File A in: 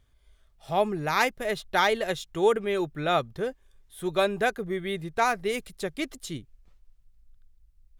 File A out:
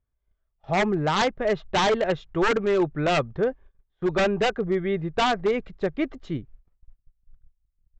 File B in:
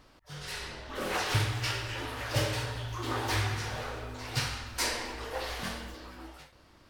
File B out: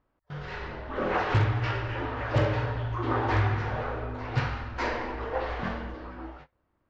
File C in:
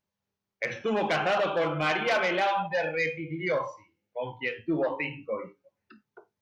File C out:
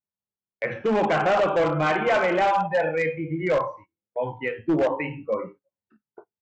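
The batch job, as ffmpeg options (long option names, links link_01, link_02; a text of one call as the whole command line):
ffmpeg -i in.wav -af "lowpass=1600,aresample=16000,aeval=exprs='0.0794*(abs(mod(val(0)/0.0794+3,4)-2)-1)':channel_layout=same,aresample=44100,agate=range=-21dB:threshold=-51dB:ratio=16:detection=peak,volume=6.5dB" out.wav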